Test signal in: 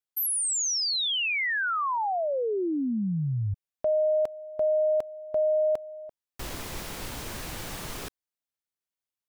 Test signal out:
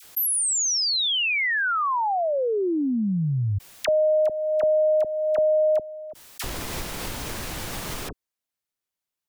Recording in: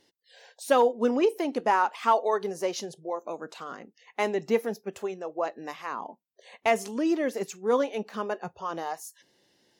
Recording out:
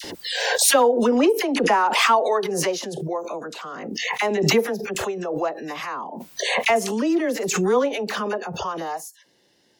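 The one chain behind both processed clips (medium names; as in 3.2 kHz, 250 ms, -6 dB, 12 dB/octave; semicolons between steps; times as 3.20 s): phase dispersion lows, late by 44 ms, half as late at 1.1 kHz; swell ahead of each attack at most 31 dB/s; trim +4 dB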